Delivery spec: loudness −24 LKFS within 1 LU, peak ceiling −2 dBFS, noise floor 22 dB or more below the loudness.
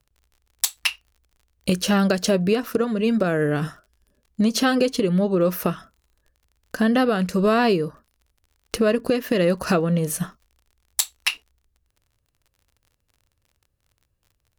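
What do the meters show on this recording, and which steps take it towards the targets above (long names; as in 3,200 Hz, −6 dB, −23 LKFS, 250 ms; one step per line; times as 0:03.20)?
crackle rate 38 per second; integrated loudness −22.0 LKFS; sample peak −2.5 dBFS; target loudness −24.0 LKFS
→ click removal
level −2 dB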